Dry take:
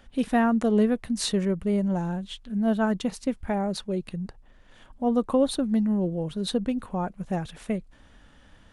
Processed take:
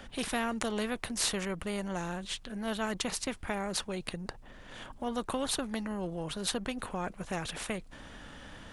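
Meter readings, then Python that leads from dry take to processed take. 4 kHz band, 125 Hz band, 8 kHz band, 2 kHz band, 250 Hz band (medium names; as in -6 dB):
0.0 dB, -10.5 dB, +3.0 dB, 0.0 dB, -12.0 dB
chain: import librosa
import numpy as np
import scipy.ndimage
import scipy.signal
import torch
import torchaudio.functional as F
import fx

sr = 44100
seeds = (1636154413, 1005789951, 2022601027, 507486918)

y = fx.spectral_comp(x, sr, ratio=2.0)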